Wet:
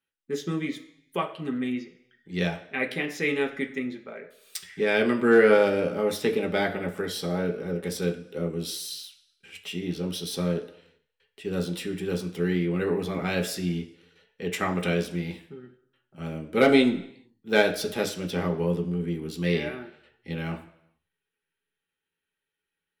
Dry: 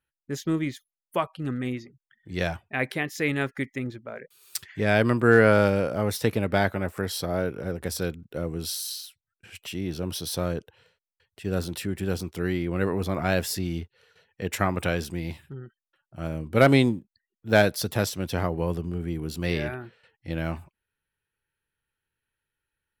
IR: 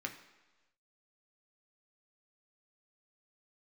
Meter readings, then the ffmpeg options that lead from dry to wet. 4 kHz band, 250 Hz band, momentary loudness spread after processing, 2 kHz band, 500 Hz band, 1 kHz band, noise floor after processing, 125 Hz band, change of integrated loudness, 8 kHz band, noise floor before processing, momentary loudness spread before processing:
+0.5 dB, 0.0 dB, 16 LU, -1.0 dB, +0.5 dB, -2.5 dB, under -85 dBFS, -4.0 dB, -0.5 dB, -3.5 dB, under -85 dBFS, 16 LU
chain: -filter_complex "[1:a]atrim=start_sample=2205,asetrate=66150,aresample=44100[s0];[0:a][s0]afir=irnorm=-1:irlink=0,volume=1.41"

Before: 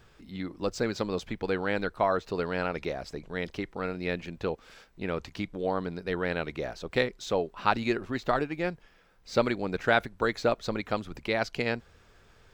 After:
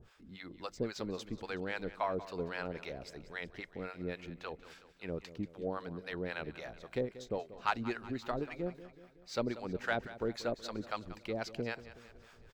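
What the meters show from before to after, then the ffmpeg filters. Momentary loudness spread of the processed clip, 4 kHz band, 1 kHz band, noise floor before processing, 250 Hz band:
12 LU, -8.5 dB, -9.0 dB, -60 dBFS, -8.0 dB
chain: -filter_complex "[0:a]areverse,acompressor=mode=upward:threshold=0.00794:ratio=2.5,areverse,acrossover=split=640[s0][s1];[s0]aeval=exprs='val(0)*(1-1/2+1/2*cos(2*PI*3.7*n/s))':c=same[s2];[s1]aeval=exprs='val(0)*(1-1/2-1/2*cos(2*PI*3.7*n/s))':c=same[s3];[s2][s3]amix=inputs=2:normalize=0,asoftclip=type=tanh:threshold=0.224,aecho=1:1:186|372|558|744|930:0.168|0.0923|0.0508|0.0279|0.0154,volume=0.631"

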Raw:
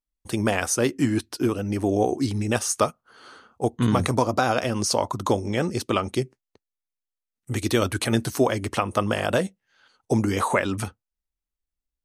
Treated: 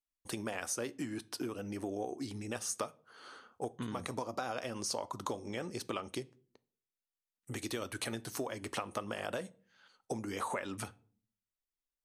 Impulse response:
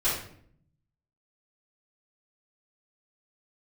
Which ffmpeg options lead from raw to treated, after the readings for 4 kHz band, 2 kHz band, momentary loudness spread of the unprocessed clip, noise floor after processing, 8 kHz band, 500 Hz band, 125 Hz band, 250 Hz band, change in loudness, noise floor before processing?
-12.5 dB, -14.0 dB, 7 LU, under -85 dBFS, -11.5 dB, -15.5 dB, -20.0 dB, -16.5 dB, -15.0 dB, under -85 dBFS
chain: -filter_complex "[0:a]acompressor=threshold=0.0398:ratio=6,lowshelf=f=150:g=-11.5,asplit=2[s0][s1];[1:a]atrim=start_sample=2205,asetrate=66150,aresample=44100[s2];[s1][s2]afir=irnorm=-1:irlink=0,volume=0.0668[s3];[s0][s3]amix=inputs=2:normalize=0,volume=0.531"

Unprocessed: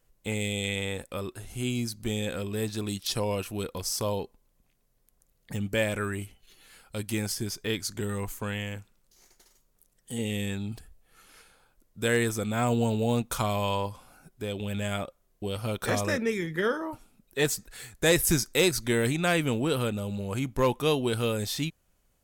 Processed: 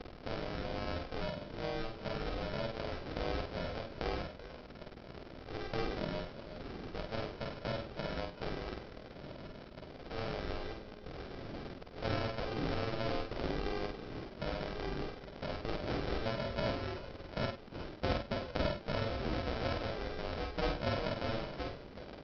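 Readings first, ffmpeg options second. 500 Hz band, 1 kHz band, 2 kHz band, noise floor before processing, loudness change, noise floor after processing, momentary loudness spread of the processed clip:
-8.5 dB, -6.0 dB, -10.5 dB, -70 dBFS, -10.0 dB, -51 dBFS, 12 LU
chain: -filter_complex "[0:a]aeval=exprs='val(0)+0.5*0.015*sgn(val(0))':c=same,acrossover=split=220 2700:gain=0.0708 1 0.2[s0][s1][s2];[s0][s1][s2]amix=inputs=3:normalize=0,acompressor=threshold=0.00501:ratio=2,aresample=11025,acrusher=samples=14:mix=1:aa=0.000001,aresample=44100,asplit=2[s3][s4];[s4]adelay=46,volume=0.316[s5];[s3][s5]amix=inputs=2:normalize=0,aeval=exprs='val(0)*sin(2*PI*220*n/s)':c=same,asplit=2[s6][s7];[s7]aecho=0:1:49|100|382|384:0.631|0.188|0.126|0.178[s8];[s6][s8]amix=inputs=2:normalize=0,volume=1.78"

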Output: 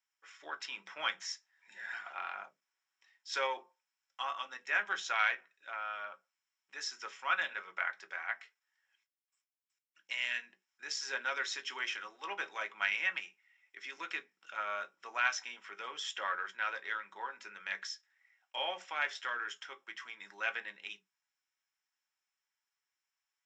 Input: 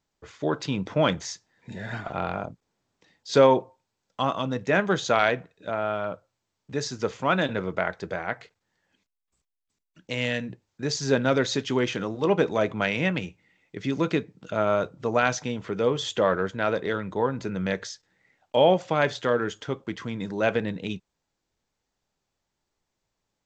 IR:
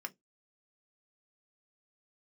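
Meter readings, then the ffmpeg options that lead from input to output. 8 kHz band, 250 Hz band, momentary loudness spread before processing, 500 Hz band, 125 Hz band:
-8.5 dB, -34.5 dB, 12 LU, -24.0 dB, under -40 dB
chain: -filter_complex "[0:a]highpass=1500[s0];[1:a]atrim=start_sample=2205[s1];[s0][s1]afir=irnorm=-1:irlink=0,volume=0.75"

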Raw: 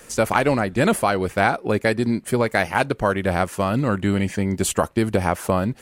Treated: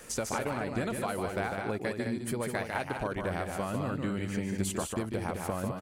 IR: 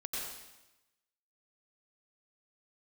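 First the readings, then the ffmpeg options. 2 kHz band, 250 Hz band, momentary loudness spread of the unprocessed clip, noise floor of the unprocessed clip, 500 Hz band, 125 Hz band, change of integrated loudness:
-13.0 dB, -11.5 dB, 3 LU, -47 dBFS, -12.5 dB, -11.5 dB, -12.0 dB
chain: -af "acompressor=threshold=0.0447:ratio=6,aecho=1:1:148.7|209.9:0.562|0.447,volume=0.631"

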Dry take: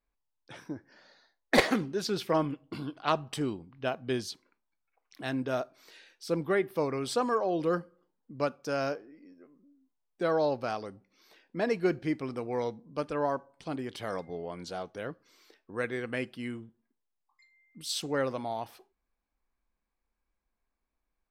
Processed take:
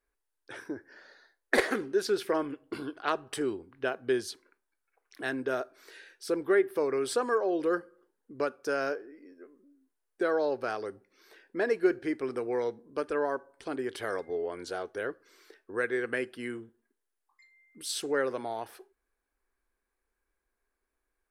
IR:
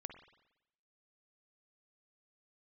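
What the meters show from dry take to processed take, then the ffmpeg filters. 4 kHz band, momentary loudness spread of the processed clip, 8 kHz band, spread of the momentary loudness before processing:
-3.0 dB, 14 LU, +1.0 dB, 13 LU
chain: -af "acompressor=threshold=0.0178:ratio=1.5,equalizer=f=160:t=o:w=0.67:g=-11,equalizer=f=400:t=o:w=0.67:g=11,equalizer=f=1600:t=o:w=0.67:g=10,equalizer=f=10000:t=o:w=0.67:g=9,volume=0.841"

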